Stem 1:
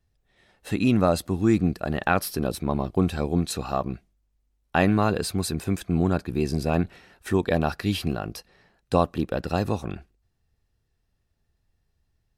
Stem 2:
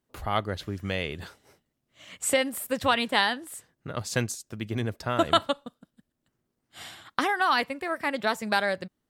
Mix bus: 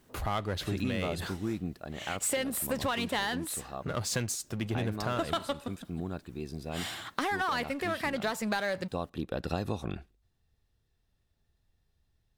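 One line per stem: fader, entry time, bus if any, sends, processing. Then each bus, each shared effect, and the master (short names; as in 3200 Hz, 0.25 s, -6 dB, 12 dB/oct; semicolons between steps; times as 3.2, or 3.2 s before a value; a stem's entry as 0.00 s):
-2.0 dB, 0.00 s, no send, bell 3600 Hz +6.5 dB 0.25 oct; auto duck -12 dB, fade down 1.95 s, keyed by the second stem
-5.0 dB, 0.00 s, no send, power-law curve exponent 0.7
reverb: off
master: compressor 5:1, threshold -28 dBFS, peak gain reduction 9 dB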